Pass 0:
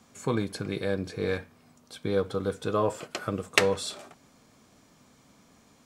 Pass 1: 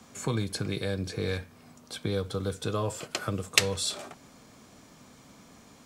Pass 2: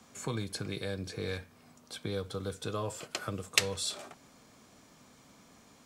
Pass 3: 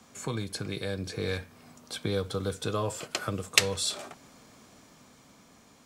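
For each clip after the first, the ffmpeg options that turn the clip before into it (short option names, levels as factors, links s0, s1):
-filter_complex "[0:a]acrossover=split=130|3000[s0][s1][s2];[s1]acompressor=threshold=0.01:ratio=2.5[s3];[s0][s3][s2]amix=inputs=3:normalize=0,volume=1.88"
-af "lowshelf=f=350:g=-3,volume=0.631"
-af "dynaudnorm=f=210:g=11:m=1.58,volume=1.26"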